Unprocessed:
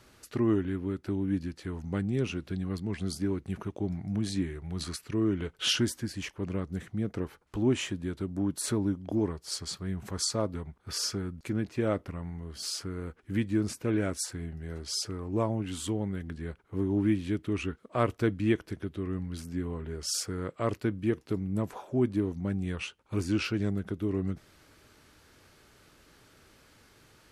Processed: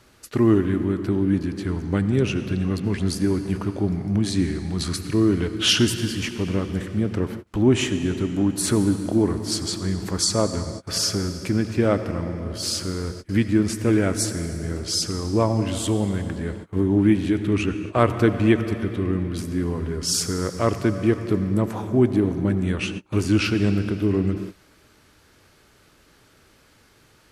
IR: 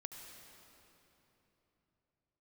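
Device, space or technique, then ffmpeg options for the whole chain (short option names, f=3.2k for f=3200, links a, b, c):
keyed gated reverb: -filter_complex "[0:a]asplit=3[a][b][c];[1:a]atrim=start_sample=2205[d];[b][d]afir=irnorm=-1:irlink=0[e];[c]apad=whole_len=1204567[f];[e][f]sidechaingate=range=-33dB:threshold=-50dB:ratio=16:detection=peak,volume=5dB[g];[a][g]amix=inputs=2:normalize=0,volume=3dB"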